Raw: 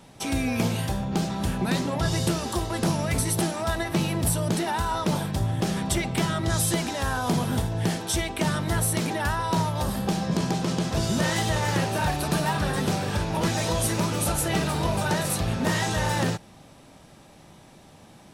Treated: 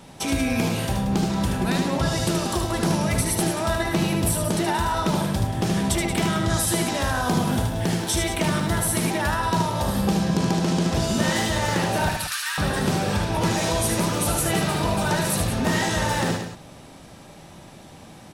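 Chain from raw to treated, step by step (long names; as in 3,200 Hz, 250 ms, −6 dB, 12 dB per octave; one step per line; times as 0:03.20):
0:12.09–0:12.58: Butterworth high-pass 1,300 Hz 36 dB per octave
downward compressor 1.5 to 1, threshold −30 dBFS, peak gain reduction 4 dB
0:07.15–0:09.18: bit-depth reduction 10 bits, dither none
loudspeakers that aren't time-aligned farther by 26 metres −5 dB, 62 metres −10 dB
convolution reverb, pre-delay 49 ms, DRR 18 dB
level +4.5 dB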